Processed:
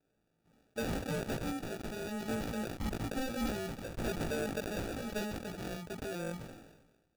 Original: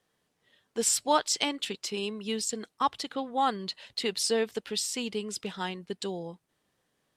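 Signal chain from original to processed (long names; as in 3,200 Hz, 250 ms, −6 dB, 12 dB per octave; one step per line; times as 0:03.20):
output level in coarse steps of 10 dB
0:02.28–0:04.78: octave-band graphic EQ 250/1,000/2,000 Hz +3/+11/+10 dB
brickwall limiter −24.5 dBFS, peak gain reduction 14.5 dB
decimation without filtering 42×
double-tracking delay 18 ms −4 dB
soft clipping −28.5 dBFS, distortion −15 dB
level that may fall only so fast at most 50 dB per second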